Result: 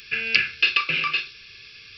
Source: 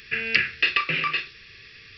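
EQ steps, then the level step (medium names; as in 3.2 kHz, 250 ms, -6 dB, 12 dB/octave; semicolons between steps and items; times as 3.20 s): Butterworth band-stop 1.9 kHz, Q 6.3; treble shelf 2.1 kHz +10 dB; -3.5 dB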